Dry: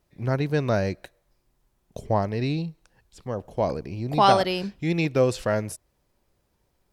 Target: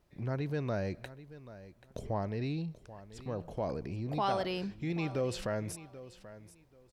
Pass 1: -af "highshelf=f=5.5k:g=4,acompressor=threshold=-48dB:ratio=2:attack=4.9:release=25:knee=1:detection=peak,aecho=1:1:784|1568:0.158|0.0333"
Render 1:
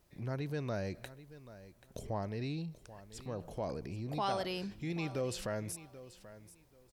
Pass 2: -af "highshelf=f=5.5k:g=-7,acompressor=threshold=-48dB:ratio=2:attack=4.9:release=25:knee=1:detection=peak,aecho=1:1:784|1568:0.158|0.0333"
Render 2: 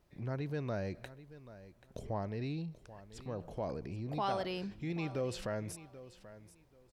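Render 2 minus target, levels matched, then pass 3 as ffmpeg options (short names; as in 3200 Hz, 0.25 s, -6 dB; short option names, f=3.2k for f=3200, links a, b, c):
compressor: peak gain reduction +3 dB
-af "highshelf=f=5.5k:g=-7,acompressor=threshold=-41.5dB:ratio=2:attack=4.9:release=25:knee=1:detection=peak,aecho=1:1:784|1568:0.158|0.0333"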